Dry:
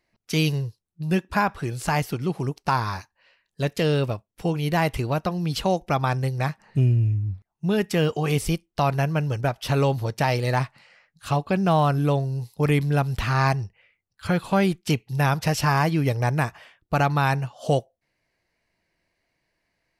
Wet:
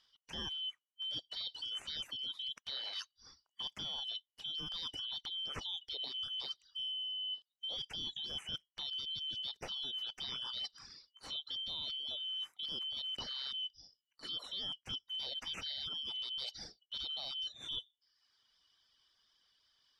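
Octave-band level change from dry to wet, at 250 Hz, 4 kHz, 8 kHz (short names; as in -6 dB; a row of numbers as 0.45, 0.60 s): -34.0, +1.5, -19.0 dB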